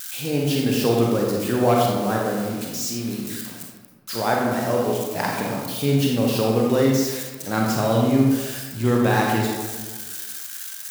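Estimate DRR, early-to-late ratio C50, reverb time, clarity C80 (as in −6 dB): −2.0 dB, 0.5 dB, 1.4 s, 3.0 dB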